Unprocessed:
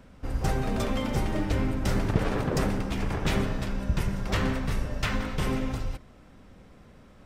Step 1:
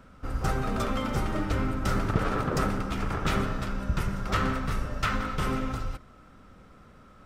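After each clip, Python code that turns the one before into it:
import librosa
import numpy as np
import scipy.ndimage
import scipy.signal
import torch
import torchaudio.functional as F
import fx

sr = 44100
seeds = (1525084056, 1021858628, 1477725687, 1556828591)

y = fx.peak_eq(x, sr, hz=1300.0, db=12.5, octaves=0.3)
y = F.gain(torch.from_numpy(y), -1.5).numpy()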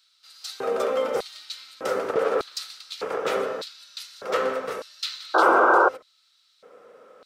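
y = fx.filter_lfo_highpass(x, sr, shape='square', hz=0.83, low_hz=480.0, high_hz=4100.0, q=6.5)
y = fx.spec_paint(y, sr, seeds[0], shape='noise', start_s=5.34, length_s=0.55, low_hz=320.0, high_hz=1600.0, level_db=-17.0)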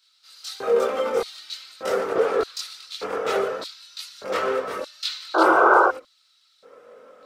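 y = fx.chorus_voices(x, sr, voices=6, hz=0.43, base_ms=23, depth_ms=2.4, mix_pct=55)
y = F.gain(torch.from_numpy(y), 4.5).numpy()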